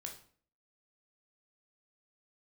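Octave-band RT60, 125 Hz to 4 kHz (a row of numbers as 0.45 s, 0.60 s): 0.60 s, 0.60 s, 0.50 s, 0.45 s, 0.45 s, 0.40 s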